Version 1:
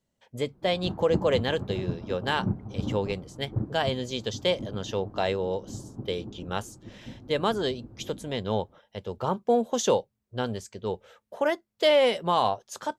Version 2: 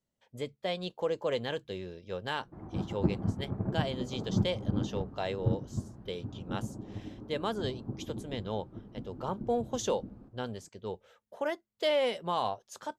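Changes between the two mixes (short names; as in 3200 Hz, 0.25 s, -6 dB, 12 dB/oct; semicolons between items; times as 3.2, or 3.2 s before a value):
speech -7.5 dB; background: entry +1.90 s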